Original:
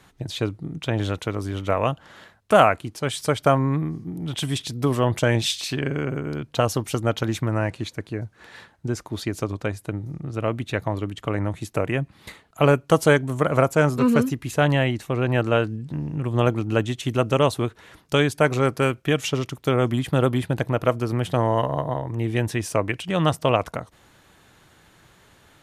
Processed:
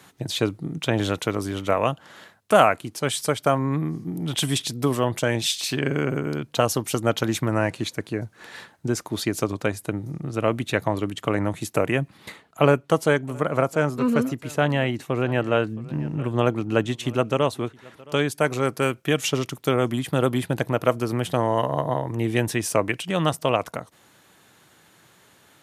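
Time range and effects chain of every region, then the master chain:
12.17–18.28 high shelf 5400 Hz -8.5 dB + echo 0.669 s -22.5 dB
whole clip: HPF 130 Hz; high shelf 7100 Hz +7 dB; vocal rider within 3 dB 0.5 s

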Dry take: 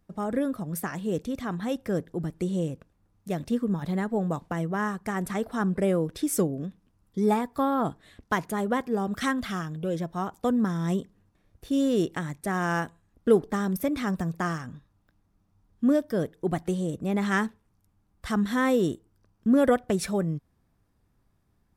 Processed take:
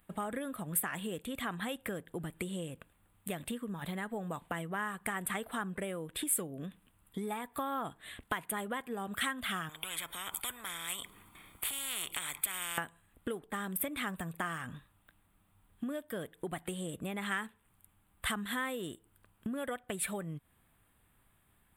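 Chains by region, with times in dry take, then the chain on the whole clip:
9.69–12.78 comb 0.9 ms, depth 56% + compressor 2:1, threshold -37 dBFS + spectral compressor 4:1
whole clip: tilt shelf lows -3 dB, about 830 Hz; compressor 12:1, threshold -36 dBFS; EQ curve 390 Hz 0 dB, 3300 Hz +9 dB, 5700 Hz -16 dB, 8200 Hz +10 dB

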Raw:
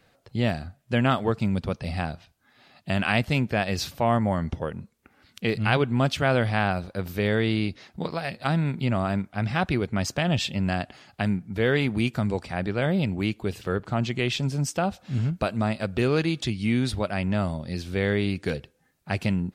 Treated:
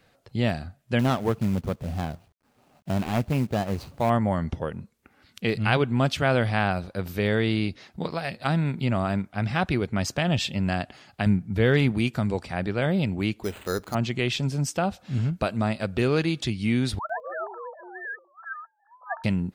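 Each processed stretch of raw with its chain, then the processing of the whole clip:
0.99–4.1 median filter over 25 samples + companded quantiser 6-bit
11.26–11.92 low shelf 170 Hz +8.5 dB + hard clip -10.5 dBFS
13.43–13.95 bell 130 Hz -12 dB 0.72 oct + careless resampling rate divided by 8×, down none, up hold
16.99–19.24 sine-wave speech + brick-wall FIR band-pass 630–1800 Hz + echoes that change speed 0.105 s, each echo -5 st, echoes 2, each echo -6 dB
whole clip: dry

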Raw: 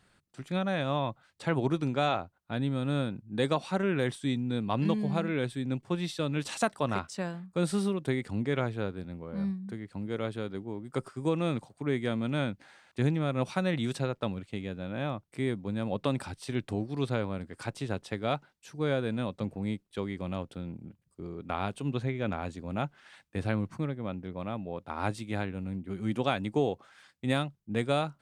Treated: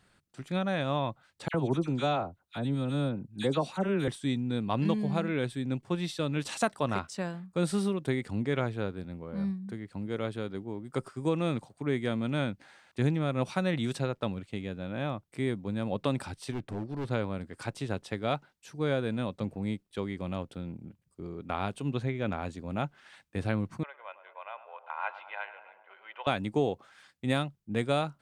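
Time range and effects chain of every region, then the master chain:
1.48–4.08 dynamic EQ 1900 Hz, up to -5 dB, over -45 dBFS, Q 1.1 + dispersion lows, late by 61 ms, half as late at 1900 Hz
16.52–17.11 high shelf 2400 Hz -8.5 dB + hard clip -30.5 dBFS
23.83–26.27 elliptic band-pass 720–2900 Hz, stop band 70 dB + comb 2 ms, depth 48% + tape echo 0.104 s, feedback 80%, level -11.5 dB, low-pass 1500 Hz
whole clip: dry

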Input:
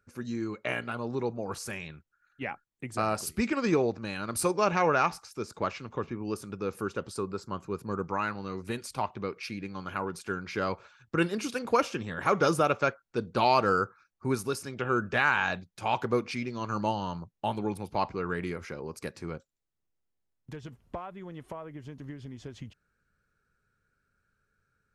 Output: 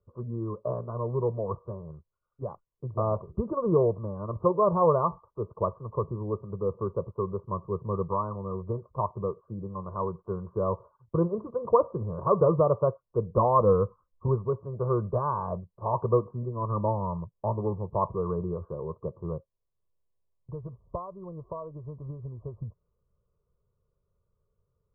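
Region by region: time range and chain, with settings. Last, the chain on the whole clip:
13.37–14.28 low shelf 110 Hz +11 dB + comb 3.9 ms, depth 47%
whole clip: steep low-pass 1200 Hz 96 dB/oct; dynamic EQ 130 Hz, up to +6 dB, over -46 dBFS, Q 0.9; comb 1.9 ms, depth 81%

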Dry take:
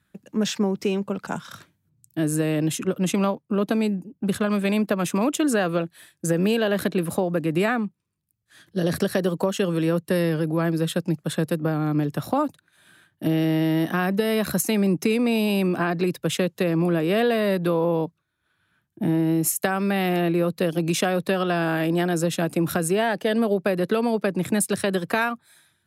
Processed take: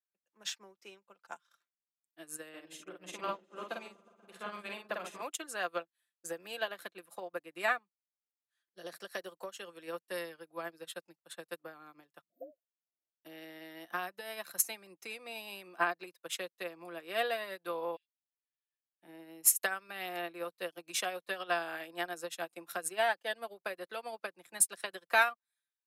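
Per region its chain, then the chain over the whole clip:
2.49–5.22 high shelf 6800 Hz -10 dB + doubler 49 ms -2 dB + repeats that get brighter 0.121 s, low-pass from 200 Hz, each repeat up 1 oct, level -3 dB
12.21–13.25 brick-wall FIR band-stop 720–13000 Hz + dispersion highs, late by 0.119 s, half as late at 350 Hz
17.96–19.03 brick-wall FIR band-pass 1600–11000 Hz + comb 5.1 ms, depth 96%
whole clip: HPF 740 Hz 12 dB/oct; comb 5.8 ms, depth 43%; upward expander 2.5:1, over -43 dBFS

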